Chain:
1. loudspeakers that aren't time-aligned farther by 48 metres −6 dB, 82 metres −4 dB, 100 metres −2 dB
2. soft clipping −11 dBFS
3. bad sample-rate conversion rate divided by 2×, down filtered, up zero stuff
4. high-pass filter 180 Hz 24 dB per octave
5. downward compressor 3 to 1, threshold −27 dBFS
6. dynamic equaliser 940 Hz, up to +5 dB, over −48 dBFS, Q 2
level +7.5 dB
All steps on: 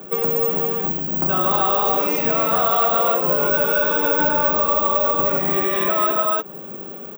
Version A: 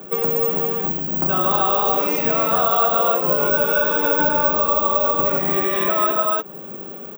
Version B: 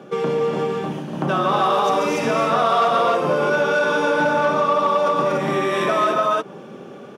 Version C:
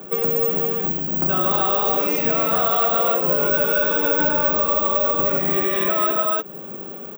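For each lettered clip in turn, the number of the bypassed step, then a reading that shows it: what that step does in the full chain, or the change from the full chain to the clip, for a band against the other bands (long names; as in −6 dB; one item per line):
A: 2, distortion level −18 dB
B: 3, change in momentary loudness spread +3 LU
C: 6, 1 kHz band −3.0 dB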